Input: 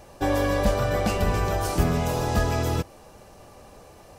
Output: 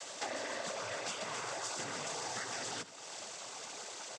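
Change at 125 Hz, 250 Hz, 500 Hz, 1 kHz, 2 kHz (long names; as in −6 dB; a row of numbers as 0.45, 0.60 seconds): −31.0, −23.5, −17.0, −13.5, −9.0 decibels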